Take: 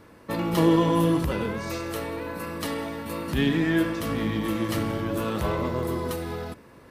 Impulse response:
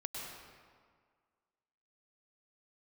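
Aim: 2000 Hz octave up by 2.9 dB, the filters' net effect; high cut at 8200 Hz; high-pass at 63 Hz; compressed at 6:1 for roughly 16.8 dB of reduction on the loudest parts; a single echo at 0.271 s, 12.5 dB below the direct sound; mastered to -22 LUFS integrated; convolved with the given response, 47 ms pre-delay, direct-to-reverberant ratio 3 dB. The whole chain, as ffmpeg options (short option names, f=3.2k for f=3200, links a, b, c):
-filter_complex "[0:a]highpass=63,lowpass=8.2k,equalizer=f=2k:t=o:g=3.5,acompressor=threshold=-34dB:ratio=6,aecho=1:1:271:0.237,asplit=2[a][b];[1:a]atrim=start_sample=2205,adelay=47[c];[b][c]afir=irnorm=-1:irlink=0,volume=-3.5dB[d];[a][d]amix=inputs=2:normalize=0,volume=13.5dB"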